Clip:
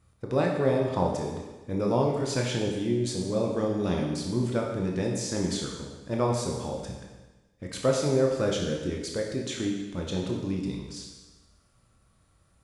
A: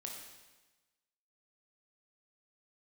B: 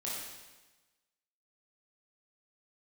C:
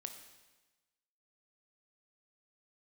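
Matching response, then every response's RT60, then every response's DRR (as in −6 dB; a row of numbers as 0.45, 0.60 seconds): A; 1.2, 1.2, 1.2 seconds; −0.5, −7.0, 5.5 decibels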